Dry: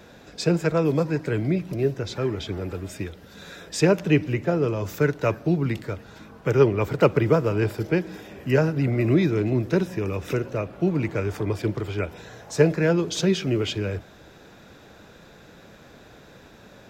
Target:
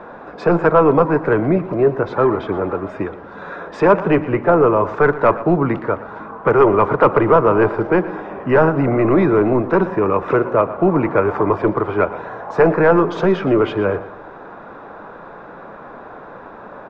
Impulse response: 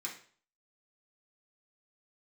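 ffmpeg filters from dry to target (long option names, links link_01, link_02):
-filter_complex "[0:a]lowpass=frequency=1100:width_type=q:width=2.6,apsyclip=17dB,equalizer=frequency=74:width=0.49:gain=-15,aeval=exprs='1.19*(cos(1*acos(clip(val(0)/1.19,-1,1)))-cos(1*PI/2))+0.0422*(cos(3*acos(clip(val(0)/1.19,-1,1)))-cos(3*PI/2))':channel_layout=same,asplit=2[link_01][link_02];[link_02]aecho=0:1:118|236|354:0.158|0.0602|0.0229[link_03];[link_01][link_03]amix=inputs=2:normalize=0,volume=-3dB"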